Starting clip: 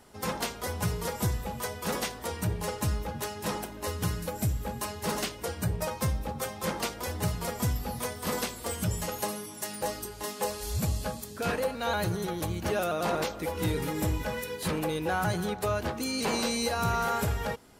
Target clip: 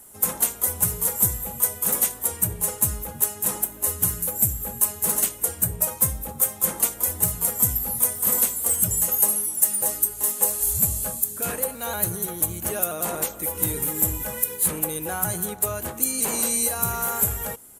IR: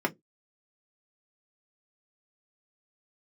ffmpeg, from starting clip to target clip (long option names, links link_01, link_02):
-af "aexciter=amount=12.4:drive=4.1:freq=7200,aresample=32000,aresample=44100,volume=-1.5dB"